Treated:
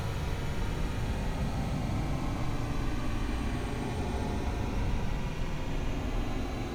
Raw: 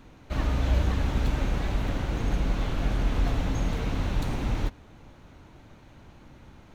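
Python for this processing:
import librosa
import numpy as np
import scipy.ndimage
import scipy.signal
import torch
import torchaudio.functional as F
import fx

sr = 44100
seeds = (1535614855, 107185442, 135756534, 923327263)

y = fx.paulstretch(x, sr, seeds[0], factor=46.0, window_s=0.05, from_s=4.25)
y = F.gain(torch.from_numpy(y), -3.0).numpy()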